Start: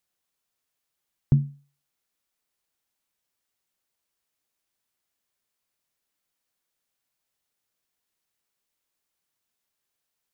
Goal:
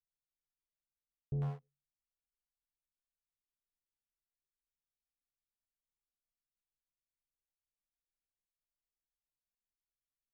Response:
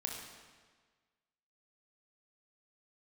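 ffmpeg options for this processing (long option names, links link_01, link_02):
-filter_complex "[0:a]anlmdn=0.0158,areverse,acompressor=threshold=-28dB:ratio=16,areverse,asoftclip=type=hard:threshold=-37dB,acrossover=split=500[link_01][link_02];[link_02]adelay=100[link_03];[link_01][link_03]amix=inputs=2:normalize=0,volume=4dB"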